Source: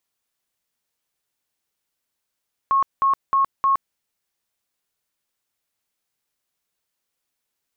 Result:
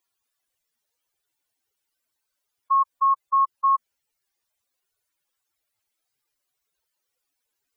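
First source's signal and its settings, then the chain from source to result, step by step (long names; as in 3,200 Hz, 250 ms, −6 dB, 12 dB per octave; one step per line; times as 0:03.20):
tone bursts 1,090 Hz, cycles 127, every 0.31 s, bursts 4, −14.5 dBFS
expanding power law on the bin magnitudes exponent 2.7
parametric band 190 Hz −13 dB 0.42 octaves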